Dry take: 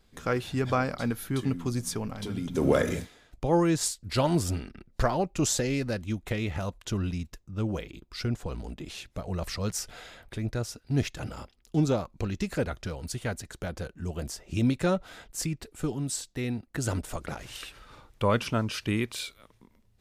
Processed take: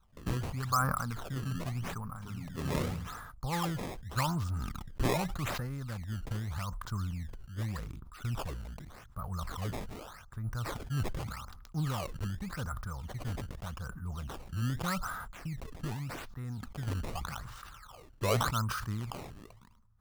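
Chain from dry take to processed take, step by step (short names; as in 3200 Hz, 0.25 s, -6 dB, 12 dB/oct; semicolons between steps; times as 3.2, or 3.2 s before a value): EQ curve 120 Hz 0 dB, 180 Hz -4 dB, 350 Hz -17 dB, 640 Hz -12 dB, 1200 Hz +8 dB, 2500 Hz -22 dB, 5000 Hz -14 dB; decimation with a swept rate 17×, swing 160% 0.84 Hz; sustainer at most 35 dB/s; gain -4 dB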